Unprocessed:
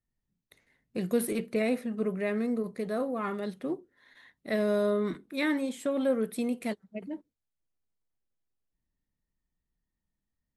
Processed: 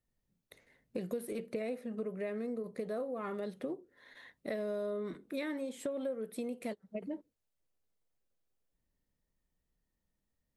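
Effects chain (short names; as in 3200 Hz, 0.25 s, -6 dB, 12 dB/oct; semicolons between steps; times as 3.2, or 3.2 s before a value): bell 520 Hz +7 dB 0.77 oct; compressor 6:1, threshold -37 dBFS, peak gain reduction 19 dB; gain +1 dB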